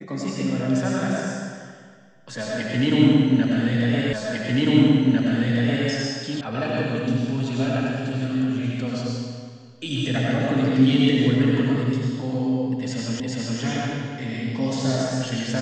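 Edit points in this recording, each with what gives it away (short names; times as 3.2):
4.13 repeat of the last 1.75 s
6.41 sound cut off
13.2 repeat of the last 0.41 s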